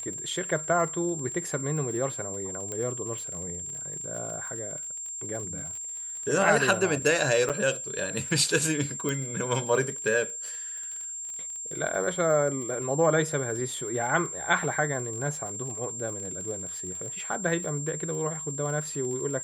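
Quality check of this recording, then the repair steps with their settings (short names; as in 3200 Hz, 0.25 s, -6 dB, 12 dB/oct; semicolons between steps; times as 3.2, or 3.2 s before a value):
crackle 31/s -36 dBFS
tone 7400 Hz -34 dBFS
2.72 pop -20 dBFS
7.49–7.5 gap 7 ms
9.09 pop -16 dBFS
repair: de-click; notch 7400 Hz, Q 30; interpolate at 7.49, 7 ms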